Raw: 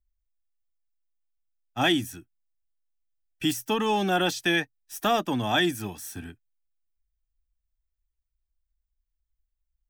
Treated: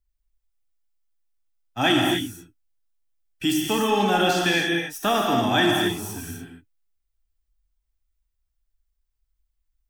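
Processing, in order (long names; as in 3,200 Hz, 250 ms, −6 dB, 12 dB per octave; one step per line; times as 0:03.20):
reverb whose tail is shaped and stops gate 310 ms flat, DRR −1 dB
level +1 dB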